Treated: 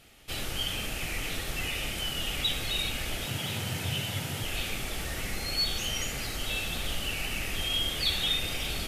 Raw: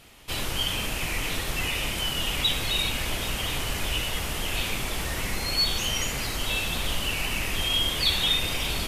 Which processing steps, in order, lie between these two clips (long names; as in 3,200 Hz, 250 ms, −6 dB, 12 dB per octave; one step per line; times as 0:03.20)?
notch filter 1,000 Hz, Q 5.1
0:03.26–0:04.43: frequency shifter +85 Hz
level −4.5 dB